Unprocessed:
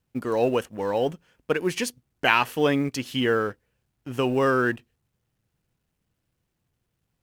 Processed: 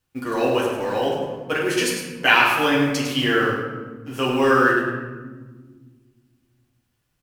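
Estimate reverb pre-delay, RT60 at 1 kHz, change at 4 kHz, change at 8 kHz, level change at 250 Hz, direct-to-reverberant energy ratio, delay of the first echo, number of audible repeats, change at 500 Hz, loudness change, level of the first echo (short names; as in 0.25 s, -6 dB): 8 ms, 1.2 s, +7.5 dB, +7.0 dB, +4.0 dB, -5.5 dB, 0.104 s, 1, +2.5 dB, +4.5 dB, -6.0 dB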